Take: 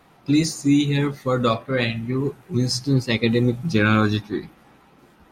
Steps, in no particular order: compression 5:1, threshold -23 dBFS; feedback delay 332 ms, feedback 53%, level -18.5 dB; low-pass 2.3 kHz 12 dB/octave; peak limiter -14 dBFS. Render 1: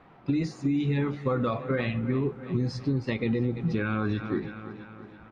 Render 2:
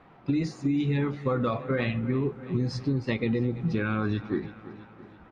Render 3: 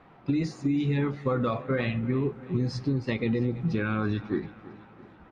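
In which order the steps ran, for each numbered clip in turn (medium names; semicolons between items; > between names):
feedback delay > peak limiter > compression > low-pass; low-pass > peak limiter > feedback delay > compression; peak limiter > low-pass > compression > feedback delay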